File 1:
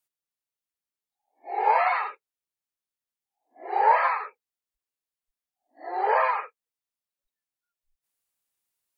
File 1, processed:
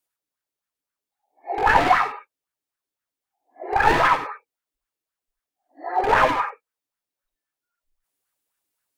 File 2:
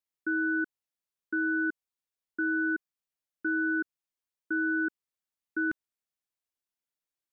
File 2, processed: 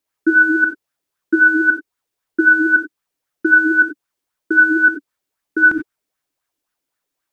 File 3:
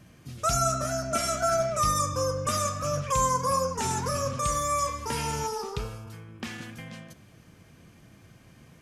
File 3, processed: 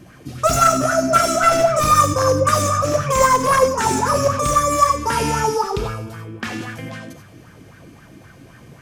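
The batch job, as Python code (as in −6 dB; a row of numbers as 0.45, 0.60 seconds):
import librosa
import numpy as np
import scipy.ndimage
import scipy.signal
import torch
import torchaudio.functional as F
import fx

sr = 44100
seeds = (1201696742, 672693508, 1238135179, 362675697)

y = np.minimum(x, 2.0 * 10.0 ** (-22.5 / 20.0) - x)
y = fx.rev_gated(y, sr, seeds[0], gate_ms=110, shape='rising', drr_db=5.0)
y = fx.bell_lfo(y, sr, hz=3.8, low_hz=280.0, high_hz=1600.0, db=12)
y = librosa.util.normalize(y) * 10.0 ** (-2 / 20.0)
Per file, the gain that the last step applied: +0.5, +10.0, +6.0 decibels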